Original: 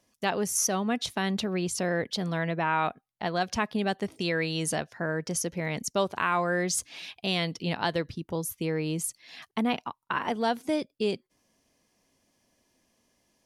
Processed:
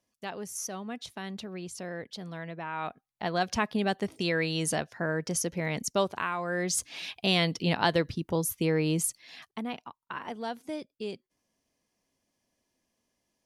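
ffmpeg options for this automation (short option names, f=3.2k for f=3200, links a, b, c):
-af "volume=10.5dB,afade=t=in:st=2.72:d=0.67:silence=0.316228,afade=t=out:st=5.99:d=0.38:silence=0.421697,afade=t=in:st=6.37:d=0.71:silence=0.298538,afade=t=out:st=9.01:d=0.6:silence=0.266073"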